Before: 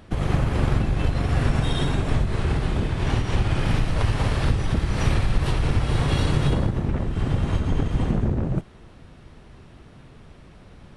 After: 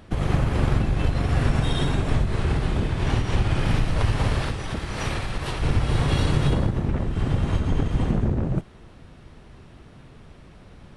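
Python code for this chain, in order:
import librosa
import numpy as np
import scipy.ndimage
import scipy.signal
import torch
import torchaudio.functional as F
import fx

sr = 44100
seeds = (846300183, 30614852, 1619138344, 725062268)

y = fx.low_shelf(x, sr, hz=280.0, db=-9.0, at=(4.42, 5.62))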